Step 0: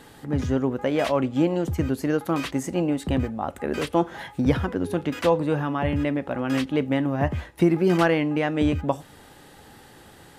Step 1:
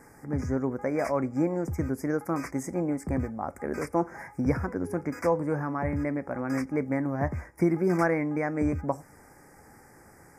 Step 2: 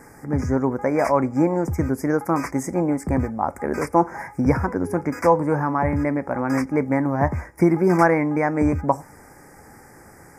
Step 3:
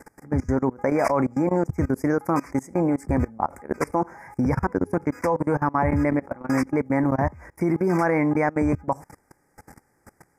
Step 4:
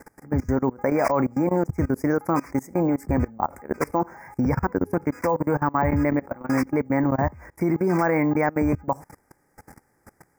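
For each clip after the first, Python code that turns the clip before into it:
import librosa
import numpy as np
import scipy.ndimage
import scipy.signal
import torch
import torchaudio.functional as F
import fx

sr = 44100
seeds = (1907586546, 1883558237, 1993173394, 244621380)

y1 = scipy.signal.sosfilt(scipy.signal.cheby1(4, 1.0, [2300.0, 5000.0], 'bandstop', fs=sr, output='sos'), x)
y1 = y1 * 10.0 ** (-4.0 / 20.0)
y2 = fx.dynamic_eq(y1, sr, hz=920.0, q=3.1, threshold_db=-47.0, ratio=4.0, max_db=7)
y2 = y2 * 10.0 ** (7.0 / 20.0)
y3 = fx.level_steps(y2, sr, step_db=23)
y3 = y3 * 10.0 ** (2.5 / 20.0)
y4 = np.repeat(y3[::2], 2)[:len(y3)]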